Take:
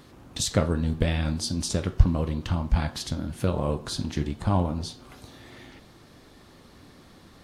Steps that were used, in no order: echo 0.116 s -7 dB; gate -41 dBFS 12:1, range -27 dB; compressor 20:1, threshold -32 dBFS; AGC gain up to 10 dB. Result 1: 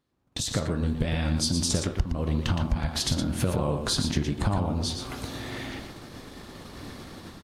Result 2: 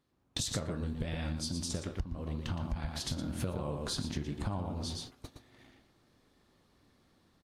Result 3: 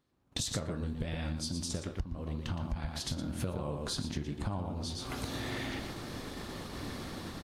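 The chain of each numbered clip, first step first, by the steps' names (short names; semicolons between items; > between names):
compressor > AGC > gate > echo; gate > echo > AGC > compressor; echo > AGC > gate > compressor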